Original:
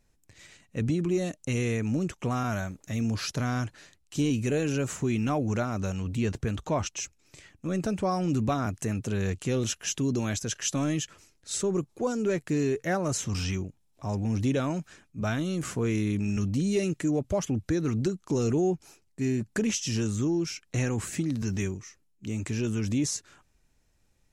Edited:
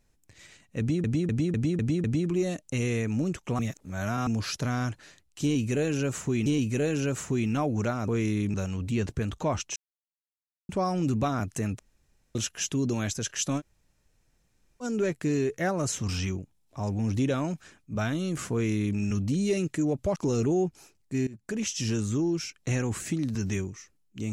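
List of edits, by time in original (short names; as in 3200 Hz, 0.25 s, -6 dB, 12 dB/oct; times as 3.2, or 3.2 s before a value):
0.79–1.04 loop, 6 plays
2.34–3.02 reverse
4.18–5.21 loop, 2 plays
7.02–7.95 mute
9.05–9.61 room tone
10.85–12.09 room tone, crossfade 0.06 s
15.78–16.24 copy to 5.8
17.42–18.23 cut
19.34–19.86 fade in, from -19 dB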